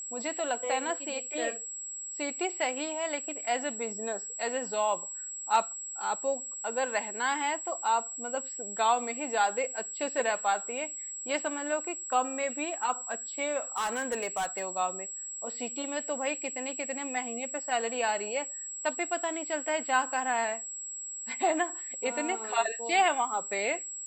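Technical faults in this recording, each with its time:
tone 7700 Hz -37 dBFS
13.76–14.66 clipped -26.5 dBFS

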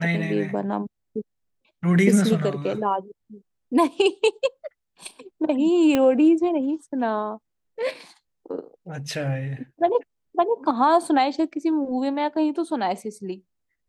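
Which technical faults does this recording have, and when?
5.95 pop -8 dBFS

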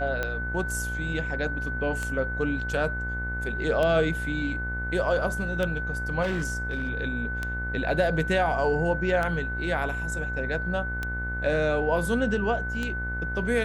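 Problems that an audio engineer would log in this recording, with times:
buzz 60 Hz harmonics 37 -33 dBFS
tick 33 1/3 rpm -15 dBFS
tone 1500 Hz -31 dBFS
6.22–6.9 clipped -23.5 dBFS

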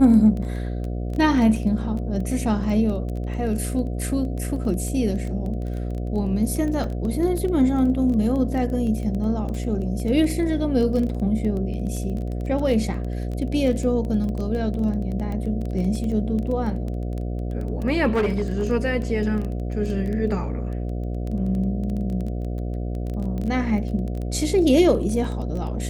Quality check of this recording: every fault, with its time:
buzz 60 Hz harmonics 12 -27 dBFS
crackle 12/s -27 dBFS
6.84 gap 2.2 ms
18.13–18.65 clipped -17 dBFS

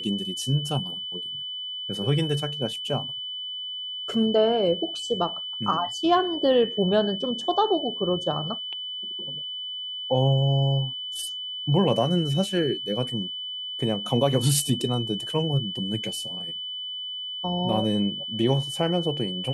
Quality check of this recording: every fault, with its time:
tone 3000 Hz -31 dBFS

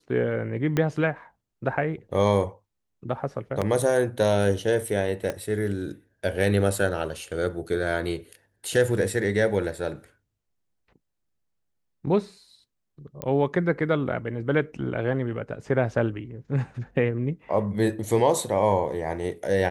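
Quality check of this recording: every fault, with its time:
0.77 pop -11 dBFS
3.61–3.62 gap 6.8 ms
5.3 pop -15 dBFS
13.22 pop -14 dBFS

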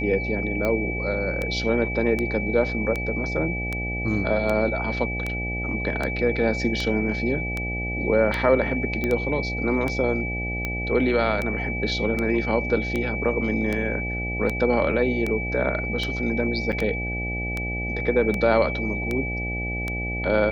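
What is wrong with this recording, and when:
buzz 60 Hz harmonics 14 -30 dBFS
tick 78 rpm -13 dBFS
tone 2300 Hz -29 dBFS
9.04 pop -13 dBFS
16.72–16.73 gap 7.6 ms

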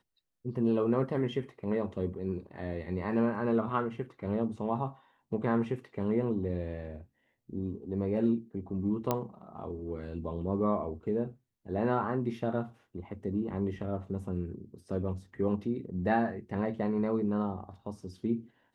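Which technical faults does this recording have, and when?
9.11 pop -14 dBFS

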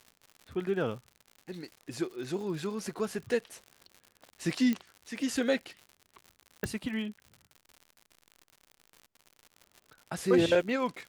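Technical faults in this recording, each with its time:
crackle 120/s -41 dBFS
4.73 pop -19 dBFS
6.64 pop -18 dBFS

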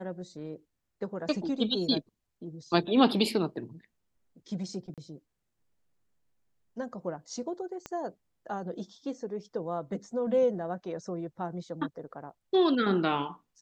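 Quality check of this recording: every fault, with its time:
4.94–4.98 gap 37 ms
7.86 pop -23 dBFS

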